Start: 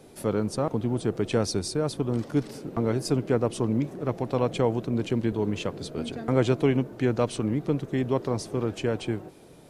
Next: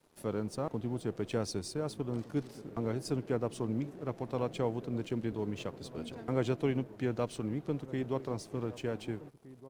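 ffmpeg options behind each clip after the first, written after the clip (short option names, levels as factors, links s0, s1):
-filter_complex "[0:a]aeval=exprs='sgn(val(0))*max(abs(val(0))-0.00316,0)':c=same,asplit=2[s0][s1];[s1]adelay=1516,volume=0.141,highshelf=f=4000:g=-34.1[s2];[s0][s2]amix=inputs=2:normalize=0,volume=0.376"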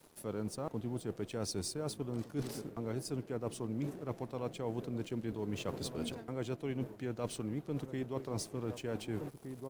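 -af "highshelf=f=8100:g=9,areverse,acompressor=threshold=0.00891:ratio=12,areverse,volume=2.24"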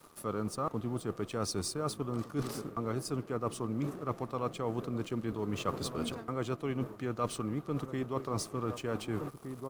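-af "equalizer=f=1200:t=o:w=0.3:g=14,volume=1.41"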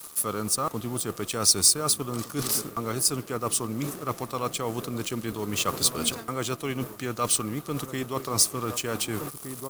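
-af "crystalizer=i=6.5:c=0,volume=1.41"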